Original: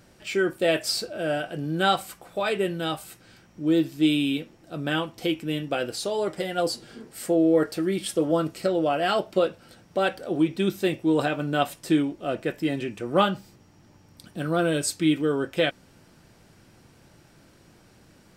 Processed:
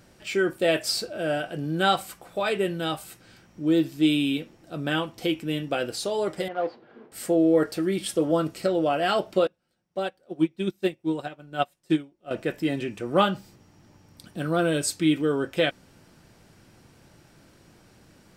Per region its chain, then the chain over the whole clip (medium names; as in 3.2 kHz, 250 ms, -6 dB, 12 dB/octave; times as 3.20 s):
6.48–7.12 s: block-companded coder 3-bit + band-pass filter 740 Hz, Q 0.81 + distance through air 280 m
9.47–12.31 s: comb 5.5 ms, depth 32% + upward expansion 2.5:1, over -33 dBFS
whole clip: none